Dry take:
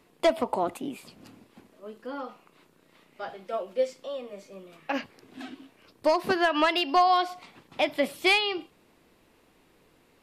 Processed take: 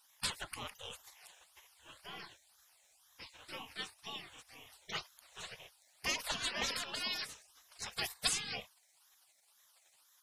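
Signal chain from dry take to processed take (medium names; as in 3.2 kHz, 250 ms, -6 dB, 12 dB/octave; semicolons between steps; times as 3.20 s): phase shifter stages 8, 2 Hz, lowest notch 610–1400 Hz; spectral gate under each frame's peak -25 dB weak; trim +10 dB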